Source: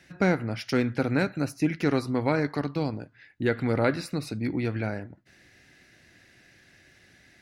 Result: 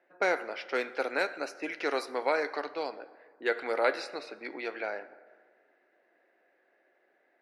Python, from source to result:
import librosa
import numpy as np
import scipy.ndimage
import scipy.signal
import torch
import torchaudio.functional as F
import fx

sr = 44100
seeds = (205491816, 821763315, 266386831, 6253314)

y = fx.env_lowpass(x, sr, base_hz=760.0, full_db=-20.5)
y = scipy.signal.sosfilt(scipy.signal.butter(4, 450.0, 'highpass', fs=sr, output='sos'), y)
y = fx.rev_plate(y, sr, seeds[0], rt60_s=1.7, hf_ratio=0.5, predelay_ms=0, drr_db=14.0)